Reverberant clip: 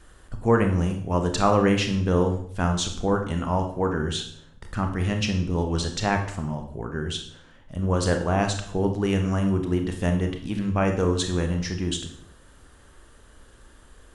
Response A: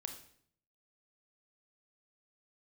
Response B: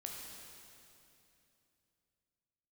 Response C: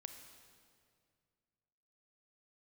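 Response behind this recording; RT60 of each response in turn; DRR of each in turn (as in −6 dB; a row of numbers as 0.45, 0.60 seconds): A; 0.60, 2.9, 2.2 seconds; 5.0, −1.0, 6.5 decibels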